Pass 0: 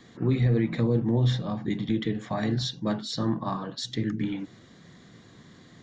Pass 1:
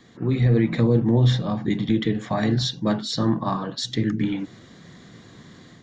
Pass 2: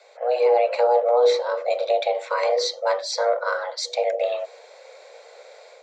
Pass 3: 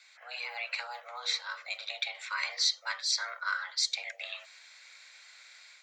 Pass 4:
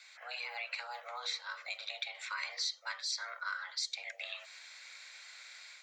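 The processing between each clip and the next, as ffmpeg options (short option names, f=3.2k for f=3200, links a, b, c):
-af "dynaudnorm=f=260:g=3:m=5.5dB"
-af "afreqshift=360"
-af "highpass=f=1.5k:w=0.5412,highpass=f=1.5k:w=1.3066"
-af "acompressor=threshold=-44dB:ratio=2,volume=2dB"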